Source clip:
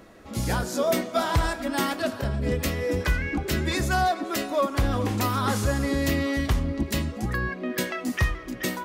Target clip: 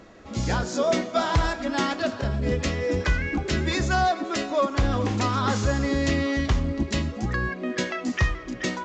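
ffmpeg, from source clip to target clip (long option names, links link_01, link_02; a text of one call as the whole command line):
ffmpeg -i in.wav -af "volume=1dB" -ar 16000 -c:a pcm_alaw out.wav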